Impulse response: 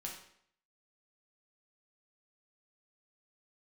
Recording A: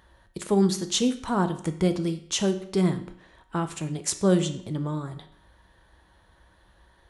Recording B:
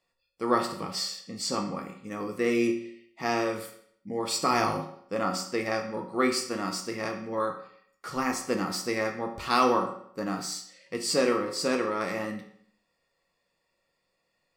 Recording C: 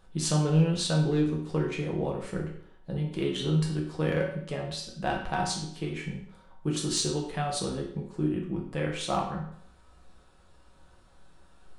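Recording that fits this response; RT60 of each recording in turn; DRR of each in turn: C; 0.65, 0.65, 0.65 s; 8.0, 3.0, -1.5 dB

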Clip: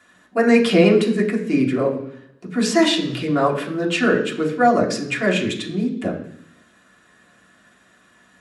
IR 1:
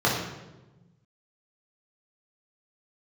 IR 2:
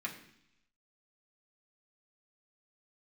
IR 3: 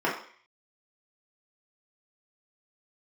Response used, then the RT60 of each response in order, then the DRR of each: 2; 1.1, 0.70, 0.50 s; -5.0, -2.5, -6.5 dB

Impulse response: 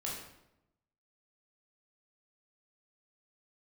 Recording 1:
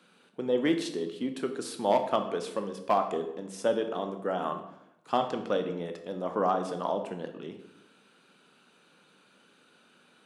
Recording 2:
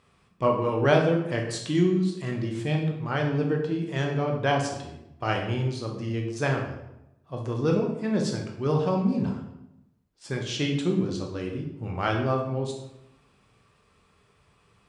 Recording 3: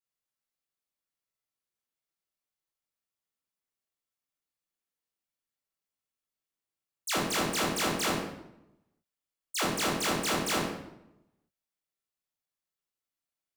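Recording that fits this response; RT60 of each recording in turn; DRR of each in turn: 3; 0.85, 0.85, 0.85 s; 6.0, 1.0, -4.5 dB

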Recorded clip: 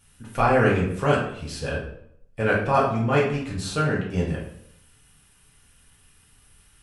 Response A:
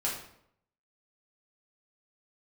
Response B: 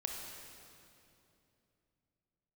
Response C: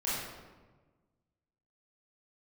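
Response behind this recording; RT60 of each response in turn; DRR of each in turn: A; 0.70, 2.8, 1.3 s; -6.0, 0.5, -9.5 dB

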